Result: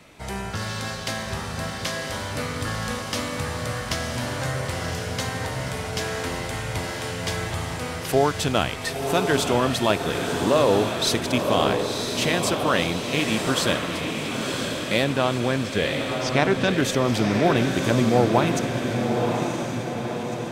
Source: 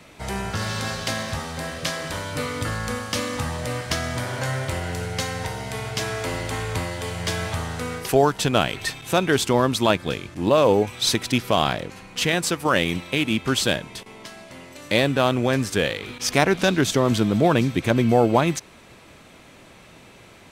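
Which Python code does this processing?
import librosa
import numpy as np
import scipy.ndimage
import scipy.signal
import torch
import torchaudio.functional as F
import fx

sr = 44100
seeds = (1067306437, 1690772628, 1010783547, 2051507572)

y = fx.lowpass(x, sr, hz=4600.0, slope=12, at=(15.04, 16.74))
y = fx.echo_diffused(y, sr, ms=1008, feedback_pct=58, wet_db=-4.0)
y = F.gain(torch.from_numpy(y), -2.5).numpy()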